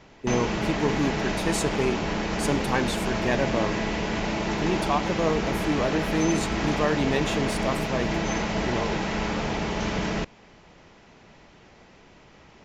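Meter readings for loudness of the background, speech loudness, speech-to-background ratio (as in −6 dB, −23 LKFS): −27.5 LKFS, −28.5 LKFS, −1.0 dB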